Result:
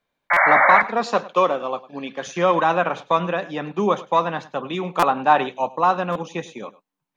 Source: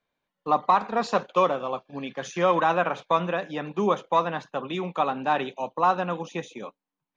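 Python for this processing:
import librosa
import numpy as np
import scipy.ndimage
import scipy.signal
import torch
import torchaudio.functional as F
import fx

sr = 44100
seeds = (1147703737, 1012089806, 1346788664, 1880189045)

y = fx.spec_paint(x, sr, seeds[0], shape='noise', start_s=0.3, length_s=0.52, low_hz=540.0, high_hz=2300.0, level_db=-19.0)
y = fx.highpass(y, sr, hz=190.0, slope=12, at=(0.83, 2.27))
y = y + 10.0 ** (-19.0 / 20.0) * np.pad(y, (int(102 * sr / 1000.0), 0))[:len(y)]
y = fx.dynamic_eq(y, sr, hz=970.0, q=0.78, threshold_db=-35.0, ratio=4.0, max_db=6, at=(4.83, 5.73))
y = fx.buffer_glitch(y, sr, at_s=(0.33, 4.99, 6.12), block=256, repeats=5)
y = y * 10.0 ** (3.5 / 20.0)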